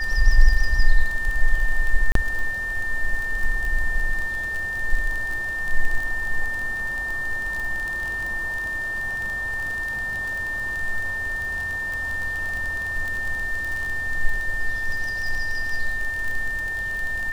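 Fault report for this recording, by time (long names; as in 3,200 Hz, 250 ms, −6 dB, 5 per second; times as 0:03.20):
surface crackle 30 per second −25 dBFS
whistle 1,800 Hz −25 dBFS
0:02.12–0:02.15: drop-out 33 ms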